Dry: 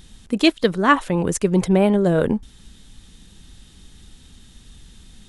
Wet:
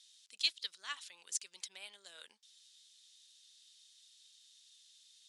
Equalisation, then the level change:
four-pole ladder band-pass 5,500 Hz, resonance 30%
+2.5 dB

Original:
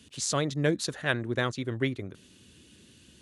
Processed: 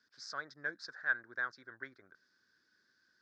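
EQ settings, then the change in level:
pair of resonant band-passes 2,800 Hz, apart 1.7 octaves
high-frequency loss of the air 120 metres
high-shelf EQ 3,900 Hz −10 dB
+3.5 dB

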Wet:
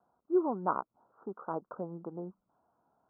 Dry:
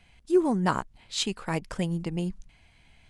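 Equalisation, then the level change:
high-pass filter 360 Hz 12 dB per octave
Butterworth low-pass 1,400 Hz 96 dB per octave
−3.0 dB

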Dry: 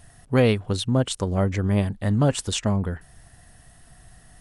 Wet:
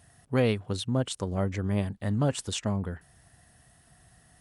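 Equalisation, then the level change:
high-pass filter 68 Hz
−6.0 dB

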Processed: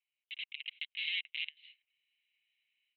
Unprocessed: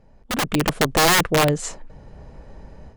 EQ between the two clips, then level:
Chebyshev high-pass with heavy ripple 2,100 Hz, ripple 3 dB
Chebyshev low-pass with heavy ripple 4,000 Hz, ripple 6 dB
high-frequency loss of the air 340 metres
−1.5 dB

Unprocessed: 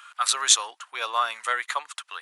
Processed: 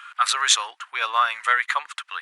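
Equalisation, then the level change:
parametric band 1,800 Hz +12.5 dB 2.3 octaves
−5.0 dB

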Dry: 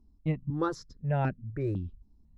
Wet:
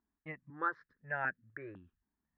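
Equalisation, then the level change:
resonant band-pass 1,700 Hz, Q 5.8
high-frequency loss of the air 490 metres
+14.5 dB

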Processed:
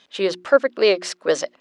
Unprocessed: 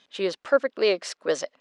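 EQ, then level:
mains-hum notches 60/120/180/240/300/360 Hz
+5.5 dB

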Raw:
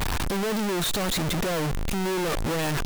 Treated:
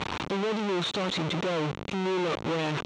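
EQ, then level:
loudspeaker in its box 160–5,200 Hz, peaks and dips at 230 Hz −4 dB, 700 Hz −4 dB, 1,700 Hz −6 dB, 4,900 Hz −9 dB
0.0 dB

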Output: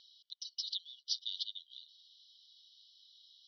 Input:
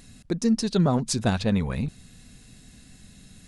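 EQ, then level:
linear-phase brick-wall band-pass 2,900–6,000 Hz
high-frequency loss of the air 230 metres
+6.0 dB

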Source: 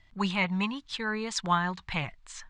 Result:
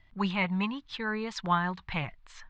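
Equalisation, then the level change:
high-frequency loss of the air 160 metres
0.0 dB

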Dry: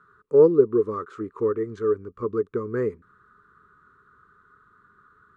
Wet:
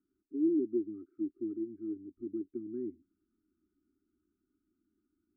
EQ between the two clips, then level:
formant resonators in series u
linear-phase brick-wall band-stop 400–1,200 Hz
phaser with its sweep stopped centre 730 Hz, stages 8
0.0 dB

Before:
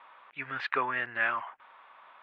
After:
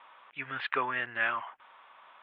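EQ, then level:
high-frequency loss of the air 310 metres
parametric band 3,300 Hz +10.5 dB 0.72 octaves
0.0 dB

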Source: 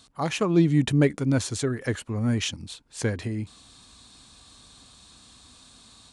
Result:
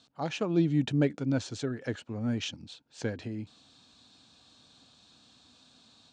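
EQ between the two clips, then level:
high-frequency loss of the air 92 metres
loudspeaker in its box 140–8,000 Hz, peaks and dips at 190 Hz −3 dB, 390 Hz −4 dB, 1,100 Hz −8 dB, 2,000 Hz −7 dB
−3.5 dB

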